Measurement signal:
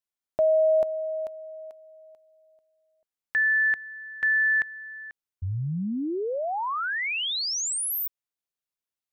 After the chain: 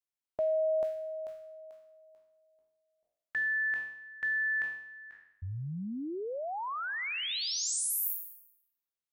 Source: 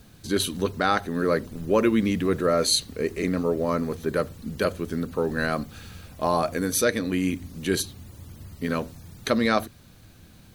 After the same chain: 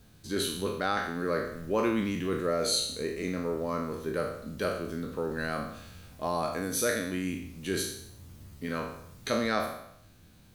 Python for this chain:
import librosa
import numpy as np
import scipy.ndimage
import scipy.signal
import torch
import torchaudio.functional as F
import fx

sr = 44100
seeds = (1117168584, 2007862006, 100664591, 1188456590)

y = fx.spec_trails(x, sr, decay_s=0.74)
y = F.gain(torch.from_numpy(y), -8.5).numpy()